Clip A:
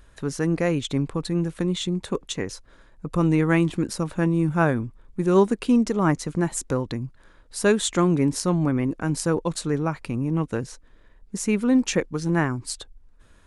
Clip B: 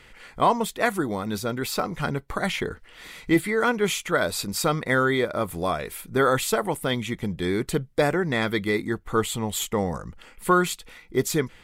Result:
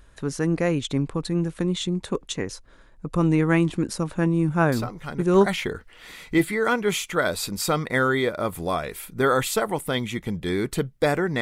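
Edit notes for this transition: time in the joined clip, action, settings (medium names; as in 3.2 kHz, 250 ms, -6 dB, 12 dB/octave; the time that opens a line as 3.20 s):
clip A
4.72 s: add clip B from 1.68 s 0.74 s -7 dB
5.46 s: go over to clip B from 2.42 s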